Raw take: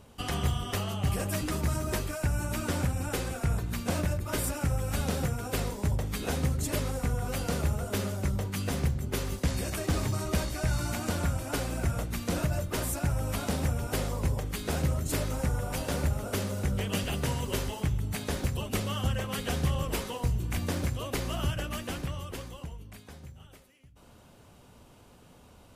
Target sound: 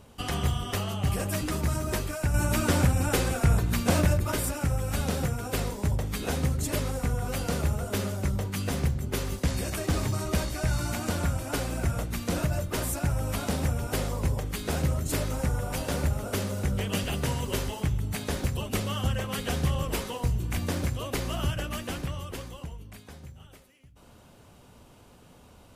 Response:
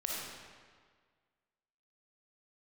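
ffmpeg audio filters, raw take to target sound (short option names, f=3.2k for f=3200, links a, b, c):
-filter_complex "[0:a]asettb=1/sr,asplit=3[a][b][c];[a]atrim=end=2.344[d];[b]atrim=start=2.34:end=4.32,asetpts=PTS-STARTPTS,afade=t=in:d=0.004:c=qsin,afade=t=out:st=1.976:d=0.004:c=qsin,acontrast=27[e];[c]atrim=start=4.316[f];[d][e]acrossfade=d=0.004:c1=hsin:c2=qsin[g];[g][f]acrossfade=d=0.004:c1=qsin:c2=hsin,volume=1.5dB"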